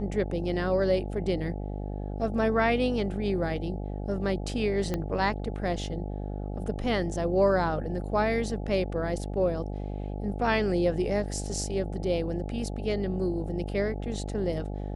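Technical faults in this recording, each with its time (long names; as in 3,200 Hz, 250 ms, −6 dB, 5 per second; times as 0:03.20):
mains buzz 50 Hz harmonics 17 −34 dBFS
0:04.94: click −16 dBFS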